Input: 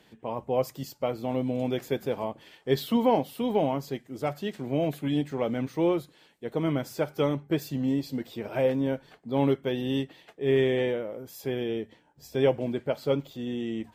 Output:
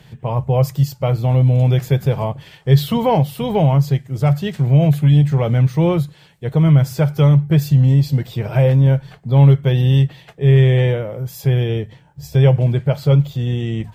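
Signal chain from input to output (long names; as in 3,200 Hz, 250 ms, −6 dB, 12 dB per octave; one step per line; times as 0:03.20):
low shelf with overshoot 190 Hz +10 dB, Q 3
in parallel at +2 dB: brickwall limiter −18 dBFS, peak gain reduction 11 dB
on the sum: level +2.5 dB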